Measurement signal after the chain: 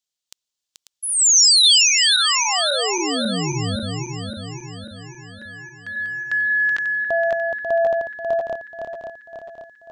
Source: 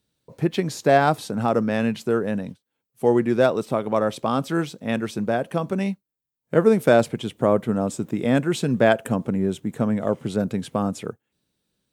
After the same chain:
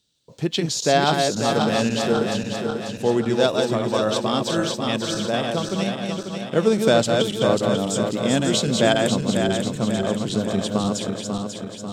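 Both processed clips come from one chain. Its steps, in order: regenerating reverse delay 0.271 s, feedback 73%, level -4 dB; band shelf 4800 Hz +12 dB; gain -2 dB

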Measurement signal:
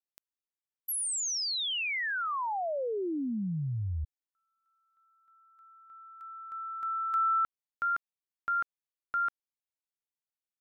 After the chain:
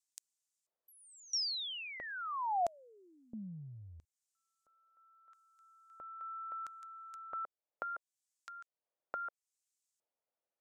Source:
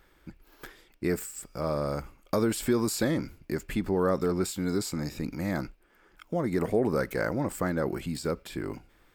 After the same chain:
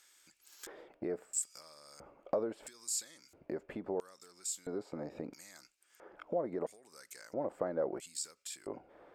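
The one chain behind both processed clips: compressor 4:1, threshold -44 dBFS; LFO band-pass square 0.75 Hz 590–7300 Hz; gain +15 dB

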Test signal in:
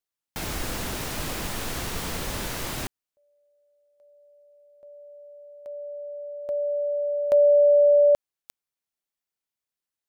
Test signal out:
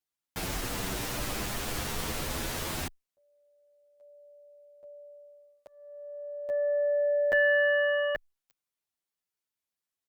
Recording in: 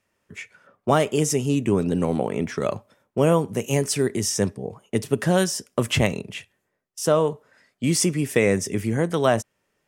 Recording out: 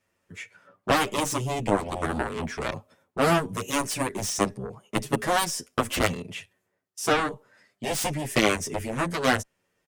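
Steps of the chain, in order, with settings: added harmonics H 2 -21 dB, 4 -21 dB, 6 -37 dB, 7 -10 dB, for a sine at -5 dBFS; endless flanger 8.8 ms +0.32 Hz

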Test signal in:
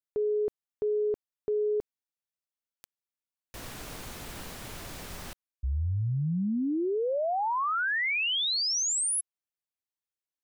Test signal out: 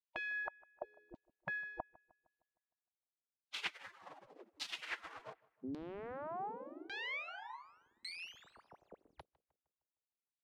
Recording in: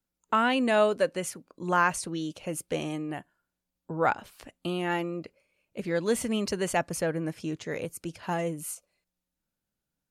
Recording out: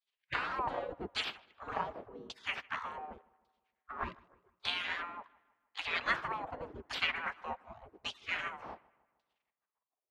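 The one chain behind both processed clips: half-wave gain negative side -7 dB; spectral gate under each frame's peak -25 dB weak; LFO low-pass saw down 0.87 Hz 280–4200 Hz; darkening echo 0.154 s, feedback 50%, low-pass 3200 Hz, level -23 dB; gain +12.5 dB

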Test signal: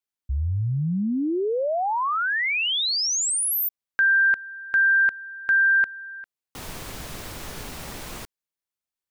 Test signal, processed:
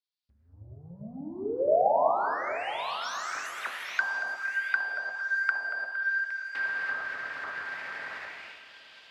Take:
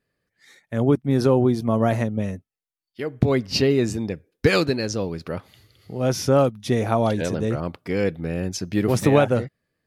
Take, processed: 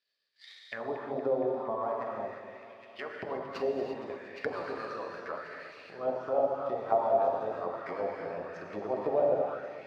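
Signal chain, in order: median filter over 9 samples; transient shaper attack +6 dB, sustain -10 dB; bell 590 Hz +4.5 dB 1.1 oct; compressor 3:1, threshold -32 dBFS; swung echo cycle 1.086 s, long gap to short 3:1, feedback 38%, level -13 dB; non-linear reverb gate 0.38 s flat, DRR -2 dB; auto-wah 660–3800 Hz, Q 3.1, down, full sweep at -22 dBFS; HPF 54 Hz; bell 4800 Hz +11.5 dB 0.49 oct; warbling echo 0.232 s, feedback 61%, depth 53 cents, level -14 dB; gain +5.5 dB

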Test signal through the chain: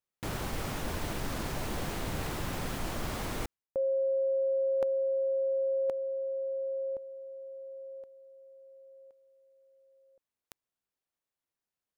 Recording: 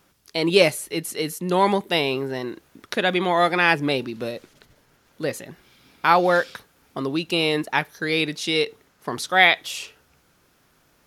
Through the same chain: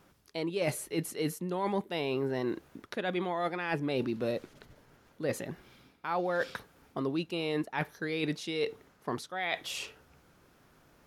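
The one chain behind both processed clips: reverse; compressor 12:1, threshold -28 dBFS; reverse; high shelf 2000 Hz -8 dB; gain +1 dB

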